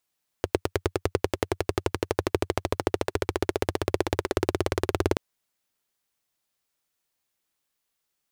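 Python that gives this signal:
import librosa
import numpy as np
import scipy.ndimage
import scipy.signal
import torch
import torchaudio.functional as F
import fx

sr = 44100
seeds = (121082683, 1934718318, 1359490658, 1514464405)

y = fx.engine_single_rev(sr, seeds[0], length_s=4.73, rpm=1100, resonances_hz=(92.0, 370.0), end_rpm=2200)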